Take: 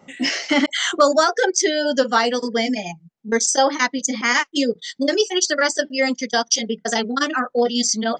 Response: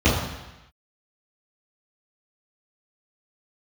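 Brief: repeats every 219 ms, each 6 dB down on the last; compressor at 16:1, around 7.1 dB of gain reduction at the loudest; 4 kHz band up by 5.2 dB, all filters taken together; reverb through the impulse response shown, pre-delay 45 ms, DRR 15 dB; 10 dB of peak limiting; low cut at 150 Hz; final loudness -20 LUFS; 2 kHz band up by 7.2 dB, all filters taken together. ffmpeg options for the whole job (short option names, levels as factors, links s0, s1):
-filter_complex "[0:a]highpass=150,equalizer=f=2000:t=o:g=7.5,equalizer=f=4000:t=o:g=4.5,acompressor=threshold=0.178:ratio=16,alimiter=limit=0.211:level=0:latency=1,aecho=1:1:219|438|657|876|1095|1314:0.501|0.251|0.125|0.0626|0.0313|0.0157,asplit=2[s0][s1];[1:a]atrim=start_sample=2205,adelay=45[s2];[s1][s2]afir=irnorm=-1:irlink=0,volume=0.0178[s3];[s0][s3]amix=inputs=2:normalize=0,volume=1.19"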